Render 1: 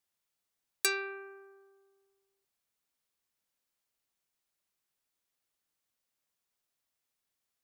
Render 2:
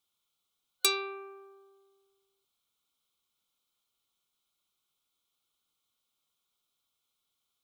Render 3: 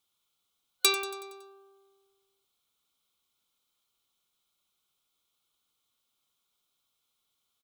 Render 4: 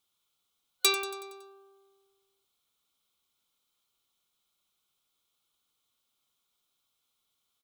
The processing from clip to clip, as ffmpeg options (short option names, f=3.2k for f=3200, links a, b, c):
-af "superequalizer=8b=0.708:10b=1.58:11b=0.251:13b=2.51,volume=2dB"
-af "aecho=1:1:93|186|279|372|465|558:0.211|0.12|0.0687|0.0391|0.0223|0.0127,volume=2.5dB"
-af "volume=14dB,asoftclip=hard,volume=-14dB"